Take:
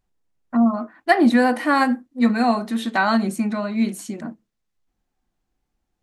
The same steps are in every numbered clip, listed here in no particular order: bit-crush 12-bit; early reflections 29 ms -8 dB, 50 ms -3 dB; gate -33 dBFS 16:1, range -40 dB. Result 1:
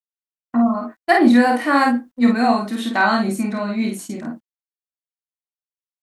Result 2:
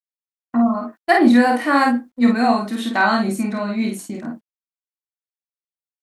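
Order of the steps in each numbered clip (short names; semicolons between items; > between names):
early reflections > gate > bit-crush; gate > early reflections > bit-crush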